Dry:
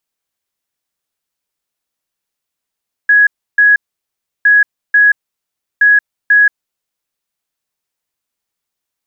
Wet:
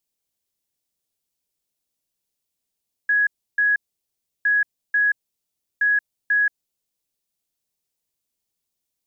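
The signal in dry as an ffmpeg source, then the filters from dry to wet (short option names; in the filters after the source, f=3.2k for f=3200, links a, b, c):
-f lavfi -i "aevalsrc='0.596*sin(2*PI*1670*t)*clip(min(mod(mod(t,1.36),0.49),0.18-mod(mod(t,1.36),0.49))/0.005,0,1)*lt(mod(t,1.36),0.98)':d=4.08:s=44100"
-af "equalizer=f=1.4k:t=o:w=1.9:g=-11.5"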